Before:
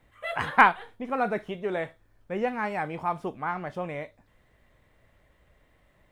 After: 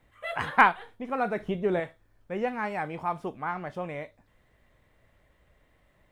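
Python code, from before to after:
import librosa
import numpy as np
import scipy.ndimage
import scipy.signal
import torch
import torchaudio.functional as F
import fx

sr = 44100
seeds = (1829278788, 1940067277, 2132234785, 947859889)

y = fx.low_shelf(x, sr, hz=400.0, db=10.5, at=(1.4, 1.8))
y = y * librosa.db_to_amplitude(-1.5)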